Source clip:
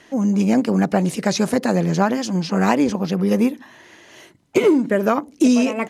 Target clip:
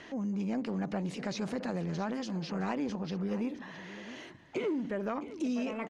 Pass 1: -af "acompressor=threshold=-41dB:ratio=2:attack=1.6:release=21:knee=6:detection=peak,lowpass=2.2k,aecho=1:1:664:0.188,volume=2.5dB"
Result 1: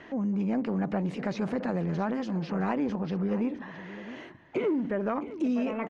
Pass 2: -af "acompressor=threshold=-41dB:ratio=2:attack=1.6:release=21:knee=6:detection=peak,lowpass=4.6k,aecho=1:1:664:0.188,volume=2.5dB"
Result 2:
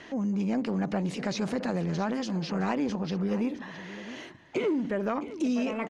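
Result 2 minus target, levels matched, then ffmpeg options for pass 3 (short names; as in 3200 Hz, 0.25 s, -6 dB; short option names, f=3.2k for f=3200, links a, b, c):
compressor: peak gain reduction -5 dB
-af "acompressor=threshold=-51dB:ratio=2:attack=1.6:release=21:knee=6:detection=peak,lowpass=4.6k,aecho=1:1:664:0.188,volume=2.5dB"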